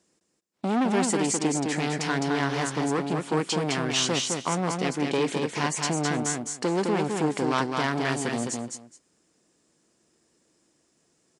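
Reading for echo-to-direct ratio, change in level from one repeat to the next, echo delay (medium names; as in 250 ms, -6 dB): -4.0 dB, -15.5 dB, 210 ms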